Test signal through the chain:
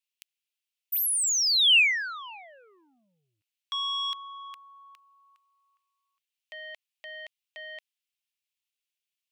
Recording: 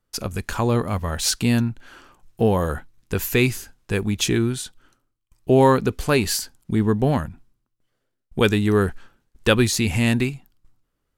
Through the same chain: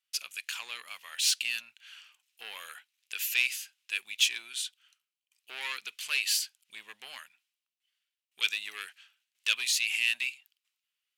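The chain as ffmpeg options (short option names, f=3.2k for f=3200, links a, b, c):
-af "asoftclip=type=tanh:threshold=-15.5dB,highpass=f=2.7k:t=q:w=2.9,volume=-4.5dB"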